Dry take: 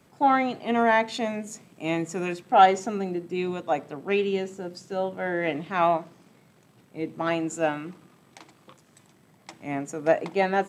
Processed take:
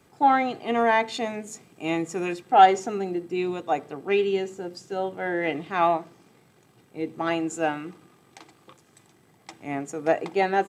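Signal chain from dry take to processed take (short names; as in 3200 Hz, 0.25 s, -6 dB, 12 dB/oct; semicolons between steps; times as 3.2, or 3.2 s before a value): comb 2.5 ms, depth 32%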